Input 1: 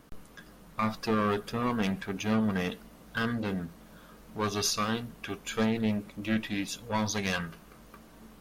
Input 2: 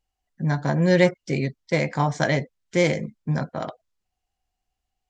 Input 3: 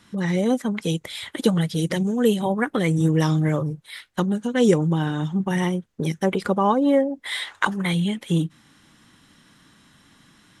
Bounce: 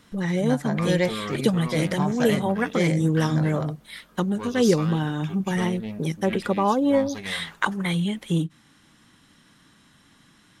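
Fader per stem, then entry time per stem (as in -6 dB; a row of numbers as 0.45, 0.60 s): -5.0, -5.5, -2.0 dB; 0.00, 0.00, 0.00 s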